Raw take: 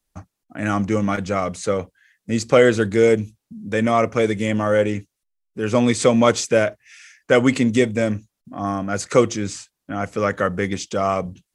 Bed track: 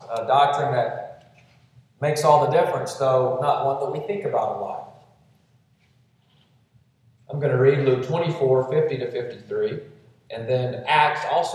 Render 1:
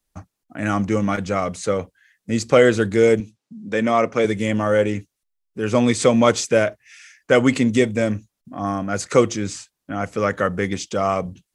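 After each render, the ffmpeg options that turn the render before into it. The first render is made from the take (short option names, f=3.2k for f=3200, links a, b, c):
-filter_complex "[0:a]asettb=1/sr,asplit=3[a][b][c];[a]atrim=end=3.204[d];[b]atrim=start=3.2:end=4.25,asetpts=PTS-STARTPTS,afade=t=in:d=0.004:c=qsin,afade=t=out:st=1.046:d=0.004:c=qsin,highpass=160,lowpass=7.4k[e];[c]atrim=start=4.246[f];[d][e]acrossfade=d=0.004:c1=hsin:c2=qsin[g];[g][f]acrossfade=d=0.004:c1=qsin:c2=hsin"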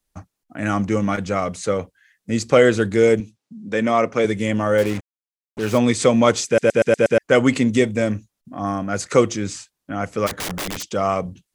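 -filter_complex "[0:a]asettb=1/sr,asplit=3[a][b][c];[a]atrim=end=4.784[d];[b]atrim=start=4.78:end=5.78,asetpts=PTS-STARTPTS,afade=t=in:d=0.004:c=qsin,afade=t=out:st=0.996:d=0.004:c=qsin,acrusher=bits=4:mix=0:aa=0.5[e];[c]atrim=start=5.776[f];[d][e]acrossfade=d=0.004:c1=hsin:c2=qsin[g];[g][f]acrossfade=d=0.004:c1=qsin:c2=hsin,asplit=3[h][i][j];[h]afade=t=out:st=10.26:d=0.02[k];[i]aeval=exprs='(mod(11.9*val(0)+1,2)-1)/11.9':c=same,afade=t=in:st=10.26:d=0.02,afade=t=out:st=10.91:d=0.02[l];[j]afade=t=in:st=10.91:d=0.02[m];[k][l][m]amix=inputs=3:normalize=0,asplit=7[n][o][p][q][r][s][t];[n]atrim=end=6.582[u];[o]atrim=start=6.458:end=6.582[v];[p]atrim=start=6.458:end=6.582[w];[q]atrim=start=6.458:end=6.582[x];[r]atrim=start=6.458:end=6.582[y];[s]atrim=start=6.458:end=6.582[z];[t]atrim=start=7.178[aa];[u][v]acrossfade=d=0.004:c1=hsin:c2=hsin[ab];[ab][w]acrossfade=d=0.004:c1=hsin:c2=hsin[ac];[ac][x]acrossfade=d=0.004:c1=hsin:c2=hsin[ad];[ad][y]acrossfade=d=0.004:c1=hsin:c2=hsin[ae];[ae][z]acrossfade=d=0.004:c1=hsin:c2=hsin[af];[af][aa]acrossfade=d=0.004:c1=hsin:c2=hsin"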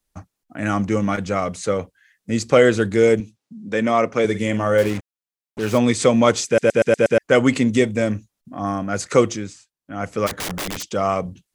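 -filter_complex "[0:a]asettb=1/sr,asplit=3[a][b][c];[a]atrim=end=4.244[d];[b]atrim=start=4.24:end=4.9,asetpts=PTS-STARTPTS,afade=t=in:d=0.004:c=qsin,afade=t=out:st=0.656:d=0.004:c=qsin,asplit=2[e][f];[f]adelay=49,volume=-11.5dB[g];[e][g]amix=inputs=2:normalize=0,atrim=end_sample=29106[h];[c]atrim=start=4.896[i];[d][h]acrossfade=d=0.004:c1=hsin:c2=qsin[j];[j][i]acrossfade=d=0.004:c1=qsin:c2=hsin,asplit=3[k][l][m];[k]atrim=end=9.55,asetpts=PTS-STARTPTS,afade=t=out:st=9.3:d=0.25:silence=0.237137[n];[l]atrim=start=9.55:end=9.82,asetpts=PTS-STARTPTS,volume=-12.5dB[o];[m]atrim=start=9.82,asetpts=PTS-STARTPTS,afade=t=in:d=0.25:silence=0.237137[p];[n][o][p]concat=n=3:v=0:a=1"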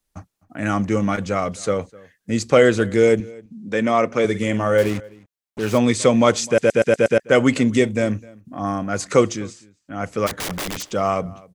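-filter_complex "[0:a]asplit=2[a][b];[b]adelay=256.6,volume=-23dB,highshelf=f=4k:g=-5.77[c];[a][c]amix=inputs=2:normalize=0"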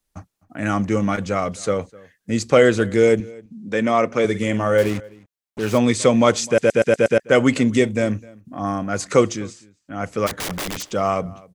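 -af anull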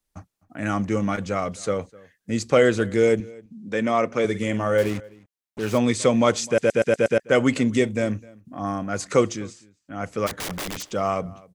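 -af "volume=-3.5dB"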